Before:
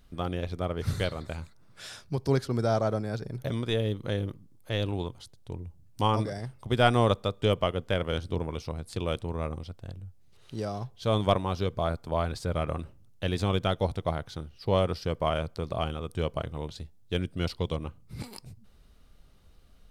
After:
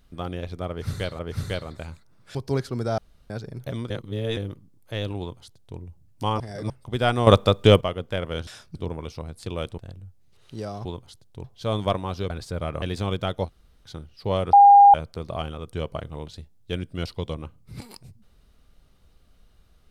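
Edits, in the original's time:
0.69–1.19 loop, 2 plays
1.85–2.13 move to 8.25
2.76–3.08 room tone
3.68–4.15 reverse
4.97–5.56 copy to 10.85
6.18–6.48 reverse
7.05–7.59 gain +10.5 dB
9.28–9.78 cut
11.71–12.24 cut
12.76–13.24 cut
13.89–14.28 room tone, crossfade 0.06 s
14.95–15.36 bleep 807 Hz -7.5 dBFS

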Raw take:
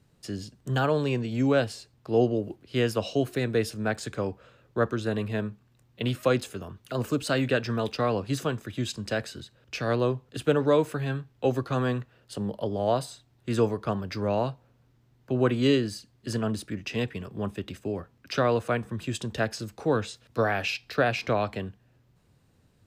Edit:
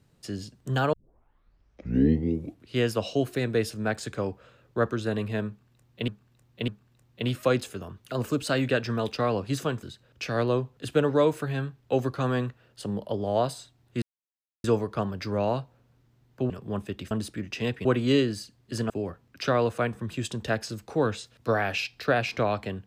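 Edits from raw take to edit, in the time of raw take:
0.93 tape start 1.85 s
5.48–6.08 loop, 3 plays
8.63–9.35 cut
13.54 insert silence 0.62 s
15.4–16.45 swap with 17.19–17.8

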